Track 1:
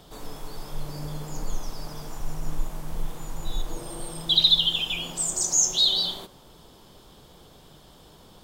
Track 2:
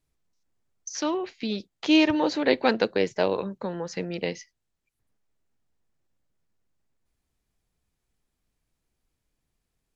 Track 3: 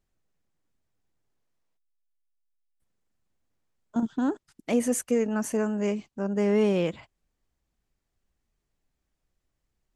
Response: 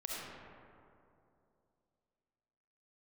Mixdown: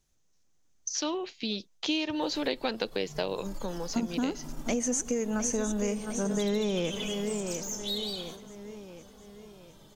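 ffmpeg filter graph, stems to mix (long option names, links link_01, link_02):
-filter_complex "[0:a]acrossover=split=160|1600|5900[link_01][link_02][link_03][link_04];[link_01]acompressor=threshold=-31dB:ratio=4[link_05];[link_02]acompressor=threshold=-41dB:ratio=4[link_06];[link_03]acompressor=threshold=-26dB:ratio=4[link_07];[link_04]acompressor=threshold=-46dB:ratio=4[link_08];[link_05][link_06][link_07][link_08]amix=inputs=4:normalize=0,aeval=exprs='(tanh(15.8*val(0)+0.3)-tanh(0.3))/15.8':channel_layout=same,asplit=2[link_09][link_10];[link_10]adelay=2.4,afreqshift=-0.96[link_11];[link_09][link_11]amix=inputs=2:normalize=1,adelay=2100,volume=-3dB,asplit=2[link_12][link_13];[link_13]volume=-14dB[link_14];[1:a]highshelf=frequency=6000:gain=-9,aexciter=amount=3.5:drive=4.6:freq=2800,volume=-4dB,asplit=2[link_15][link_16];[2:a]lowpass=frequency=6300:width_type=q:width=5.9,volume=1dB,asplit=3[link_17][link_18][link_19];[link_18]volume=-21.5dB[link_20];[link_19]volume=-11.5dB[link_21];[link_16]apad=whole_len=464556[link_22];[link_12][link_22]sidechaincompress=threshold=-29dB:ratio=8:attack=8.5:release=246[link_23];[3:a]atrim=start_sample=2205[link_24];[link_14][link_20]amix=inputs=2:normalize=0[link_25];[link_25][link_24]afir=irnorm=-1:irlink=0[link_26];[link_21]aecho=0:1:708|1416|2124|2832|3540|4248|4956:1|0.5|0.25|0.125|0.0625|0.0312|0.0156[link_27];[link_23][link_15][link_17][link_26][link_27]amix=inputs=5:normalize=0,acompressor=threshold=-26dB:ratio=6"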